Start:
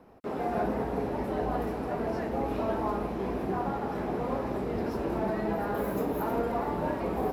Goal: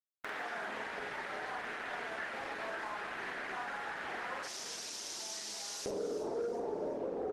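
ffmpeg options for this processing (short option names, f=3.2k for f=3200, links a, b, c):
-filter_complex "[0:a]acrusher=bits=5:mix=0:aa=0.000001,asetnsamples=n=441:p=0,asendcmd='4.43 bandpass f 5800;5.86 bandpass f 460',bandpass=f=1.7k:t=q:w=2.9:csg=0,acompressor=mode=upward:threshold=-39dB:ratio=2.5,asplit=2[a][b];[b]adelay=47,volume=-2dB[c];[a][c]amix=inputs=2:normalize=0,asoftclip=type=tanh:threshold=-26dB,acompressor=threshold=-38dB:ratio=6,asplit=5[d][e][f][g][h];[e]adelay=368,afreqshift=-58,volume=-13dB[i];[f]adelay=736,afreqshift=-116,volume=-20.5dB[j];[g]adelay=1104,afreqshift=-174,volume=-28.1dB[k];[h]adelay=1472,afreqshift=-232,volume=-35.6dB[l];[d][i][j][k][l]amix=inputs=5:normalize=0,volume=3.5dB" -ar 48000 -c:a libopus -b:a 20k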